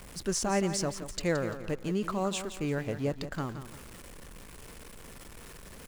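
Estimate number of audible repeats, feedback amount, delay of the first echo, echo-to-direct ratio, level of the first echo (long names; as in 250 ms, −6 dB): 3, 32%, 171 ms, −10.5 dB, −11.0 dB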